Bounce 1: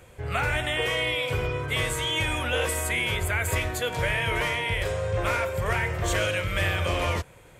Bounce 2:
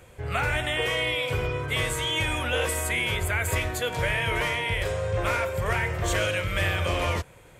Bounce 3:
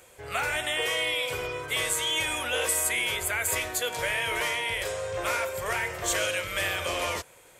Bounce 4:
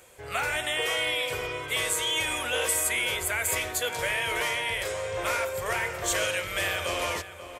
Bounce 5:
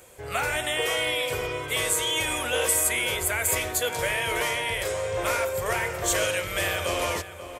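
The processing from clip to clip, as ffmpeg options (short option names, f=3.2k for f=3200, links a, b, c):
-af anull
-af "bass=f=250:g=-13,treble=f=4k:g=8,volume=-2dB"
-filter_complex "[0:a]asplit=2[a][b];[b]adelay=536.4,volume=-11dB,highshelf=f=4k:g=-12.1[c];[a][c]amix=inputs=2:normalize=0"
-af "equalizer=f=2.4k:w=0.36:g=-4.5,volume=5dB"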